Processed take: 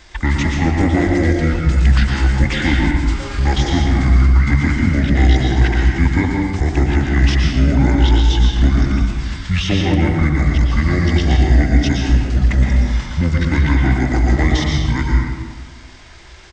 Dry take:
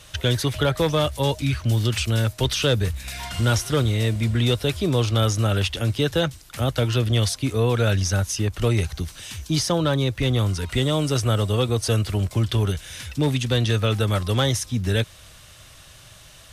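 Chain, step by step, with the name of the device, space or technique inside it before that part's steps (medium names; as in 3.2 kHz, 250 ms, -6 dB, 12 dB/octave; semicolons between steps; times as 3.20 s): monster voice (pitch shift -9.5 st; bass shelf 140 Hz +4 dB; reverberation RT60 1.5 s, pre-delay 108 ms, DRR -1 dB); trim +2 dB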